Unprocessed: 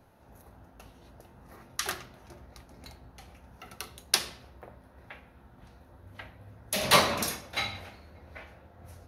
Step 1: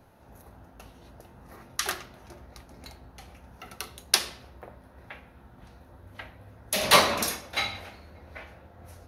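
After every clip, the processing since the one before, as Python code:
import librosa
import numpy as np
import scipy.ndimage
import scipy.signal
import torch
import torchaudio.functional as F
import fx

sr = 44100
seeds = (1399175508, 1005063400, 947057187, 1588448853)

y = fx.dynamic_eq(x, sr, hz=130.0, q=1.1, threshold_db=-54.0, ratio=4.0, max_db=-6)
y = y * 10.0 ** (3.0 / 20.0)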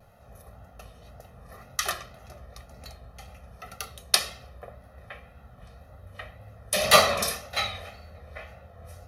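y = x + 0.81 * np.pad(x, (int(1.6 * sr / 1000.0), 0))[:len(x)]
y = fx.vibrato(y, sr, rate_hz=1.9, depth_cents=56.0)
y = y * 10.0 ** (-1.0 / 20.0)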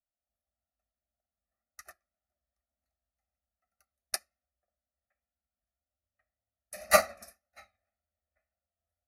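y = fx.fixed_phaser(x, sr, hz=670.0, stages=8)
y = fx.upward_expand(y, sr, threshold_db=-44.0, expansion=2.5)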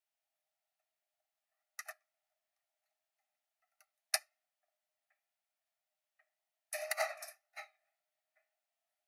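y = fx.over_compress(x, sr, threshold_db=-30.0, ratio=-0.5)
y = scipy.signal.sosfilt(scipy.signal.cheby1(6, 6, 600.0, 'highpass', fs=sr, output='sos'), y)
y = y * 10.0 ** (1.0 / 20.0)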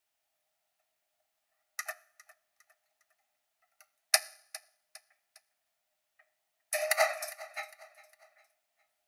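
y = fx.echo_feedback(x, sr, ms=406, feedback_pct=41, wet_db=-19.5)
y = fx.rev_fdn(y, sr, rt60_s=0.68, lf_ratio=1.0, hf_ratio=0.95, size_ms=66.0, drr_db=16.0)
y = y * 10.0 ** (8.5 / 20.0)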